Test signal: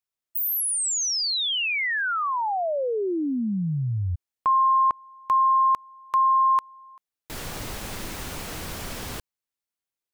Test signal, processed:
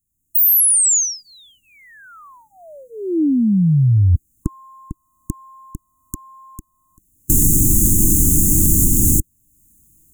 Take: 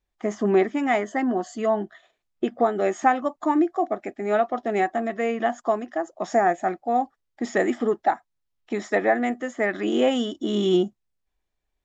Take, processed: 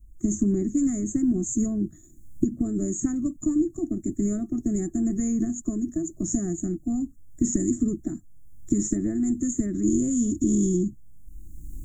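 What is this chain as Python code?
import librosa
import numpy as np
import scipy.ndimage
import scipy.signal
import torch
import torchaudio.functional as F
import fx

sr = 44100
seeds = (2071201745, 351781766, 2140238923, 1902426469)

y = fx.recorder_agc(x, sr, target_db=-12.0, rise_db_per_s=25.0, max_gain_db=24)
y = scipy.signal.sosfilt(scipy.signal.ellip(4, 1.0, 40, [320.0, 6800.0], 'bandstop', fs=sr, output='sos'), y)
y = fx.low_shelf(y, sr, hz=260.0, db=9.5)
y = fx.hpss(y, sr, part='percussive', gain_db=-5)
y = fx.low_shelf(y, sr, hz=71.0, db=9.0)
y = fx.spectral_comp(y, sr, ratio=2.0)
y = y * librosa.db_to_amplitude(-1.0)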